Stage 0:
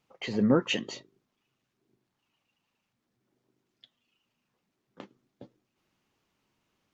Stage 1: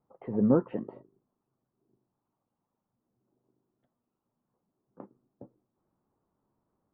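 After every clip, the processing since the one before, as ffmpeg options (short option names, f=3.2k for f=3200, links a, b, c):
-af "lowpass=f=1.1k:w=0.5412,lowpass=f=1.1k:w=1.3066"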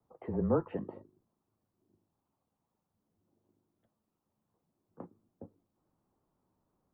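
-filter_complex "[0:a]acrossover=split=130|450[a][b][c];[b]acompressor=threshold=-36dB:ratio=6[d];[a][d][c]amix=inputs=3:normalize=0,afreqshift=-25"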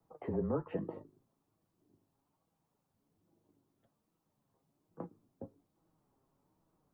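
-af "acompressor=threshold=-33dB:ratio=6,flanger=delay=6.1:depth=1.4:regen=53:speed=1.2:shape=sinusoidal,volume=6.5dB"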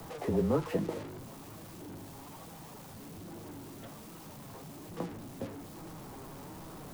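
-af "aeval=exprs='val(0)+0.5*0.00562*sgn(val(0))':c=same,acrusher=bits=9:mix=0:aa=0.000001,volume=5dB"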